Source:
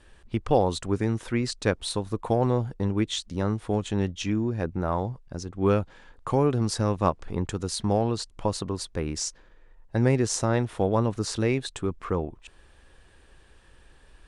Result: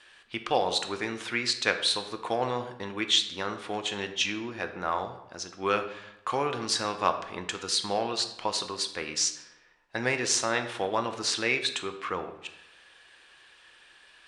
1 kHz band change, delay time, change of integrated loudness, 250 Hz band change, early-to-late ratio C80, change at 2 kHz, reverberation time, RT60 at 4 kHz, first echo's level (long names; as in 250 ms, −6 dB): +0.5 dB, no echo audible, −2.0 dB, −10.0 dB, 12.5 dB, +7.0 dB, 0.90 s, 0.65 s, no echo audible